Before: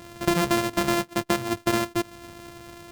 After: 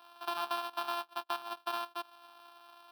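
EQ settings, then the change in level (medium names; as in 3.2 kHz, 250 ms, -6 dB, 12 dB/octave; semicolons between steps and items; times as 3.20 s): ladder high-pass 550 Hz, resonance 35%; treble shelf 5.4 kHz -5 dB; static phaser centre 2 kHz, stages 6; 0.0 dB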